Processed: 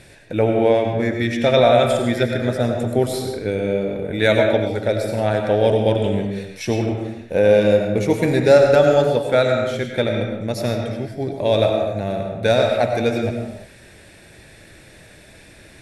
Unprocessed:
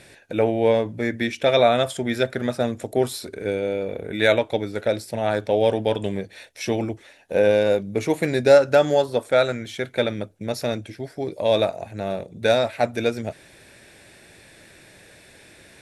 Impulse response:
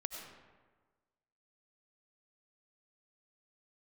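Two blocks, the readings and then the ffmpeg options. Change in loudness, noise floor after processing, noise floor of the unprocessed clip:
+3.5 dB, −46 dBFS, −50 dBFS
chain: -filter_complex "[0:a]lowshelf=frequency=140:gain=10.5[link_01];[1:a]atrim=start_sample=2205,afade=type=out:start_time=0.42:duration=0.01,atrim=end_sample=18963[link_02];[link_01][link_02]afir=irnorm=-1:irlink=0,volume=3dB"

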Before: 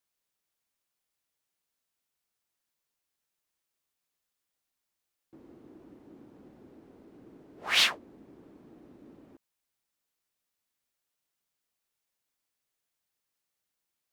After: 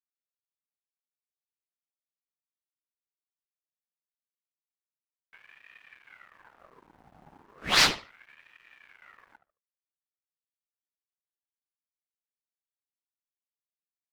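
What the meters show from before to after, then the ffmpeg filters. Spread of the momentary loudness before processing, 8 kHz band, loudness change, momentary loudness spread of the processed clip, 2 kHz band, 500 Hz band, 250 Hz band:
12 LU, +5.0 dB, +2.5 dB, 19 LU, +2.5 dB, +6.0 dB, +4.0 dB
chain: -filter_complex "[0:a]aeval=exprs='sgn(val(0))*max(abs(val(0))-0.00158,0)':channel_layout=same,asplit=2[link_01][link_02];[link_02]adelay=73,lowpass=frequency=3700:poles=1,volume=-13dB,asplit=2[link_03][link_04];[link_04]adelay=73,lowpass=frequency=3700:poles=1,volume=0.24,asplit=2[link_05][link_06];[link_06]adelay=73,lowpass=frequency=3700:poles=1,volume=0.24[link_07];[link_01][link_03][link_05][link_07]amix=inputs=4:normalize=0,aeval=exprs='val(0)*sin(2*PI*1300*n/s+1300*0.65/0.35*sin(2*PI*0.35*n/s))':channel_layout=same,volume=6dB"

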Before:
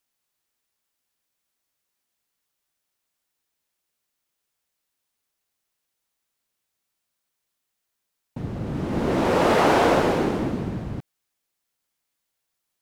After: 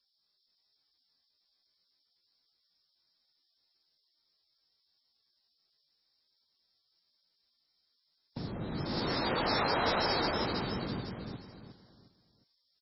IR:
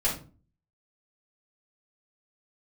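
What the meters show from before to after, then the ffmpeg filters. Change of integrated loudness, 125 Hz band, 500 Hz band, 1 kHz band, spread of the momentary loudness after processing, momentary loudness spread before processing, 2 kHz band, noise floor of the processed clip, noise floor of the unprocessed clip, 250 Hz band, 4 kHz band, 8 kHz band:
−10.5 dB, −10.0 dB, −13.0 dB, −9.5 dB, 16 LU, 16 LU, −7.0 dB, −78 dBFS, −80 dBFS, −12.0 dB, 0.0 dB, below −35 dB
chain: -filter_complex "[0:a]acrossover=split=140|870[link_01][link_02][link_03];[link_01]acompressor=threshold=-40dB:ratio=4[link_04];[link_02]acompressor=threshold=-33dB:ratio=4[link_05];[link_03]acompressor=threshold=-29dB:ratio=4[link_06];[link_04][link_05][link_06]amix=inputs=3:normalize=0,aexciter=amount=7.9:drive=7.4:freq=4100,aecho=1:1:358|716|1074|1432:0.708|0.234|0.0771|0.0254,volume=-4.5dB" -ar 16000 -c:a libmp3lame -b:a 16k

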